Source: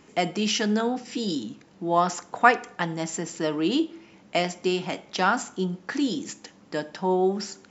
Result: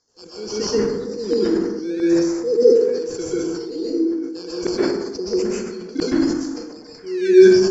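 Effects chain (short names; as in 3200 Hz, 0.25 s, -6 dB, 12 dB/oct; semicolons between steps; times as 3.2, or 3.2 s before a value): FFT band-reject 510–4200 Hz; LFO high-pass saw down 1.5 Hz 290–1700 Hz; in parallel at -9 dB: decimation with a swept rate 16×, swing 100% 0.71 Hz; on the sum: steep low-pass 6400 Hz 36 dB/oct; on a send: delay with a stepping band-pass 0.289 s, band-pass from 250 Hz, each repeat 1.4 oct, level -11.5 dB; on the sum: plate-style reverb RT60 1.1 s, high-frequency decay 0.45×, pre-delay 0.11 s, DRR -8.5 dB; sustainer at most 44 dB/s; gain -3.5 dB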